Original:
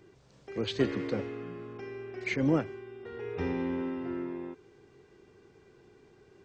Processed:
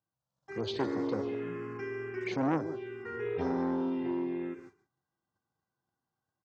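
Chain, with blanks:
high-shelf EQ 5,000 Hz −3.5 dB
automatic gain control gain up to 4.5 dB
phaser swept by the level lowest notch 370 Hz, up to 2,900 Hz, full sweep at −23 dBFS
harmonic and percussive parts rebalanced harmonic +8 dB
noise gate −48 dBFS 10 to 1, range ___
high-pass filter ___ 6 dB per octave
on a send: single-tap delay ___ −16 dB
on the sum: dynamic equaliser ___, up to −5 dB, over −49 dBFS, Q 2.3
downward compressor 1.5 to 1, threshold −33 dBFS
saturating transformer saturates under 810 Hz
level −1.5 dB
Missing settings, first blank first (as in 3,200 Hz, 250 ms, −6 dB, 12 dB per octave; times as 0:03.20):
−28 dB, 240 Hz, 144 ms, 2,500 Hz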